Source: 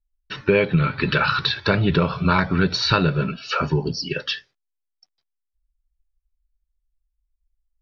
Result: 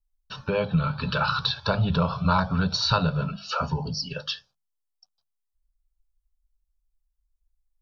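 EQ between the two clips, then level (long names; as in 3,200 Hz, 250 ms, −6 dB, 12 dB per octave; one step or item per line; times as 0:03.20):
mains-hum notches 50/100/150/200 Hz
phaser with its sweep stopped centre 840 Hz, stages 4
0.0 dB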